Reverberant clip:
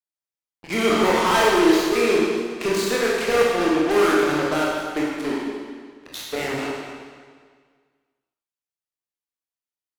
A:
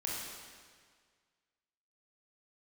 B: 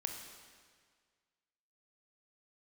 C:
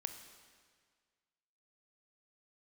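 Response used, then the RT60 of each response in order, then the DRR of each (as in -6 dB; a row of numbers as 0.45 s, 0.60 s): A; 1.8 s, 1.8 s, 1.8 s; -5.0 dB, 3.0 dB, 7.0 dB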